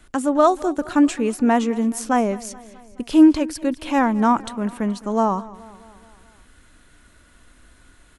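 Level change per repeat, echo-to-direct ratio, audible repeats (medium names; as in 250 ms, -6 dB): -4.5 dB, -18.0 dB, 4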